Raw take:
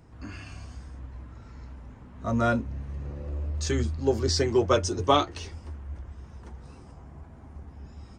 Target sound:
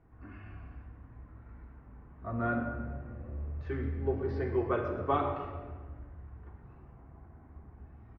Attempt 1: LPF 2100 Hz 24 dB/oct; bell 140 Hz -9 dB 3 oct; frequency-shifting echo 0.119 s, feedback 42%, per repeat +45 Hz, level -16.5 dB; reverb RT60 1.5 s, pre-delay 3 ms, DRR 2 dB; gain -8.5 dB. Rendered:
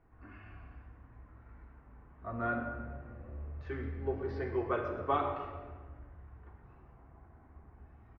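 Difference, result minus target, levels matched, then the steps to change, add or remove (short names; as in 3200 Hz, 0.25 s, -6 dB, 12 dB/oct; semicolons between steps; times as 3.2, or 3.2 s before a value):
125 Hz band -3.0 dB
change: bell 140 Hz -2.5 dB 3 oct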